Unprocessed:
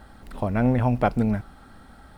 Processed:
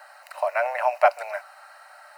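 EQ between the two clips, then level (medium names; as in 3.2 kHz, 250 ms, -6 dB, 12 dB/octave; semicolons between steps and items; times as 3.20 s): rippled Chebyshev high-pass 570 Hz, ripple 3 dB; Butterworth band-stop 3.4 kHz, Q 4.5; band-stop 820 Hz, Q 12; +8.0 dB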